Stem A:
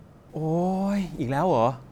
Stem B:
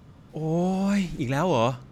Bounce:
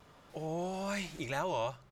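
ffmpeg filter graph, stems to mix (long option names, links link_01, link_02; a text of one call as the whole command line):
ffmpeg -i stem1.wav -i stem2.wav -filter_complex "[0:a]equalizer=frequency=260:width=0.88:gain=-9,volume=-16.5dB,asplit=2[link_01][link_02];[1:a]highpass=560,adelay=3.2,volume=0.5dB[link_03];[link_02]apad=whole_len=84437[link_04];[link_03][link_04]sidechaincompress=threshold=-47dB:ratio=5:attack=6.4:release=566[link_05];[link_01][link_05]amix=inputs=2:normalize=0,lowshelf=frequency=150:gain=6" out.wav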